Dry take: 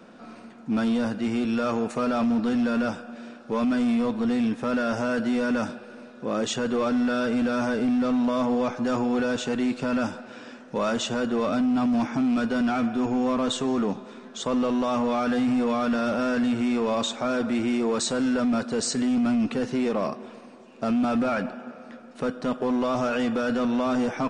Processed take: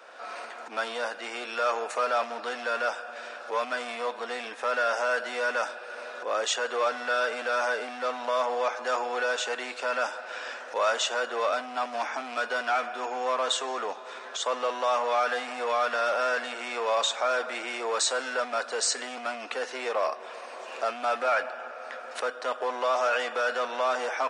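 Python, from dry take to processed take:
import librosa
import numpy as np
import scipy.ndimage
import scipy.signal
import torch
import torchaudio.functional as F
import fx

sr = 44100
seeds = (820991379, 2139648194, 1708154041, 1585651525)

y = fx.recorder_agc(x, sr, target_db=-27.0, rise_db_per_s=23.0, max_gain_db=30)
y = scipy.signal.sosfilt(scipy.signal.butter(4, 540.0, 'highpass', fs=sr, output='sos'), y)
y = fx.peak_eq(y, sr, hz=1700.0, db=3.0, octaves=0.77)
y = y * 10.0 ** (2.0 / 20.0)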